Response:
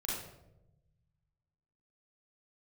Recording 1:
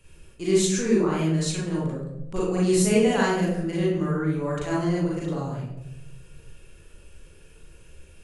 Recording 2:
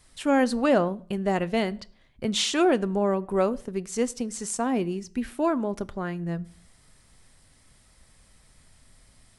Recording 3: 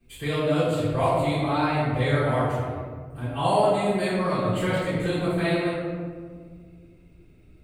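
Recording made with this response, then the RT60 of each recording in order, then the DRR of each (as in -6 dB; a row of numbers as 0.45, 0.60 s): 1; 0.90, 0.50, 1.8 s; -6.5, 15.0, -18.5 dB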